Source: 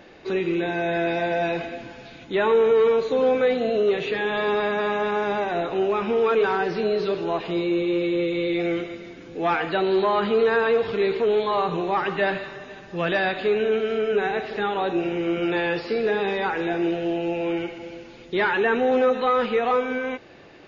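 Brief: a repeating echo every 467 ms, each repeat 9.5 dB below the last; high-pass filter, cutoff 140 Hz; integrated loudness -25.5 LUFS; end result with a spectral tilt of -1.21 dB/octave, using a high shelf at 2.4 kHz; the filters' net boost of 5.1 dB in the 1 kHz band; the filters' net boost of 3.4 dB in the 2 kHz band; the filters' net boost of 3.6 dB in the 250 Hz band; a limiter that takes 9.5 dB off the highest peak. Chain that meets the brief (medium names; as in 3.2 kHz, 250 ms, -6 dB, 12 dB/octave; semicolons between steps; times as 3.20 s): high-pass 140 Hz; peaking EQ 250 Hz +5.5 dB; peaking EQ 1 kHz +6.5 dB; peaking EQ 2 kHz +5 dB; treble shelf 2.4 kHz -7 dB; peak limiter -17 dBFS; feedback delay 467 ms, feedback 33%, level -9.5 dB; trim -1.5 dB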